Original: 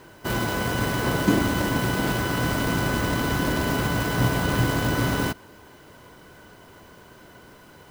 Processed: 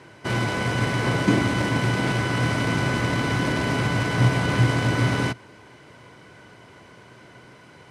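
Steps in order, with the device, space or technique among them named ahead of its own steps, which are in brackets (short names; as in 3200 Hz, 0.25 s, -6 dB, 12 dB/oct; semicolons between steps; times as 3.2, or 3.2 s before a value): car door speaker (speaker cabinet 87–9200 Hz, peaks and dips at 120 Hz +7 dB, 2200 Hz +7 dB, 7200 Hz -4 dB)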